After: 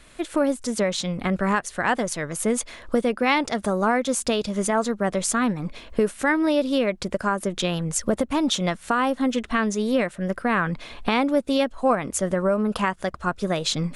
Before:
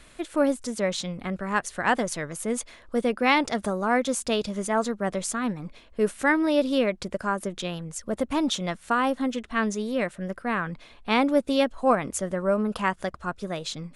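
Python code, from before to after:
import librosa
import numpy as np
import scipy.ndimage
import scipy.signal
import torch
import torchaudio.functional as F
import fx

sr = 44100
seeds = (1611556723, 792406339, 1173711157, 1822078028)

y = fx.recorder_agc(x, sr, target_db=-12.0, rise_db_per_s=18.0, max_gain_db=30)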